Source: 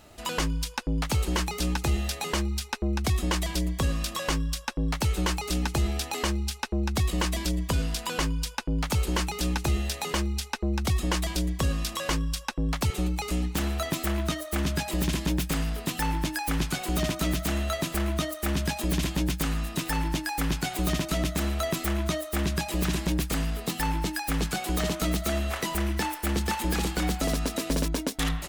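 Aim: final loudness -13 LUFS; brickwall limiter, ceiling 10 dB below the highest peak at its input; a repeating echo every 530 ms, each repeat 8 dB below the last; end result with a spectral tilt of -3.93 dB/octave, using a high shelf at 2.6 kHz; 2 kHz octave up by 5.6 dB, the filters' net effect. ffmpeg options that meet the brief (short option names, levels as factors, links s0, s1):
-af "equalizer=f=2000:t=o:g=4.5,highshelf=f=2600:g=5.5,alimiter=limit=0.0841:level=0:latency=1,aecho=1:1:530|1060|1590|2120|2650:0.398|0.159|0.0637|0.0255|0.0102,volume=6.68"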